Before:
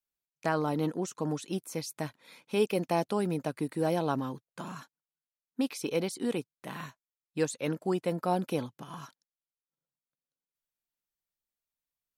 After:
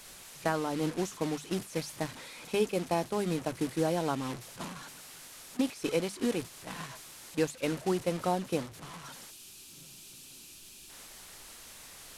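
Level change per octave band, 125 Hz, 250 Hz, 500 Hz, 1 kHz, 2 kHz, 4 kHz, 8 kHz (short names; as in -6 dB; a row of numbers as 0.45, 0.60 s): -1.5, -0.5, -0.5, -1.0, +1.0, +2.5, +3.0 dB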